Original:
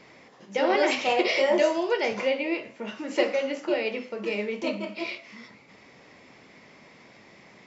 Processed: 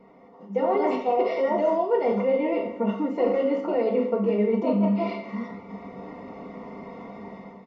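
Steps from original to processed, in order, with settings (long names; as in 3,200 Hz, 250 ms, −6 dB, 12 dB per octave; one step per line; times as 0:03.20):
comb filter 4.3 ms, depth 81%
on a send at −7.5 dB: convolution reverb RT60 0.85 s, pre-delay 3 ms
on the sum: automatic gain control gain up to 13 dB
tuned comb filter 100 Hz, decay 0.6 s, harmonics all, mix 70%
reversed playback
downward compressor, threshold −26 dBFS, peak gain reduction 9.5 dB
reversed playback
Savitzky-Golay smoothing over 65 samples
level +7.5 dB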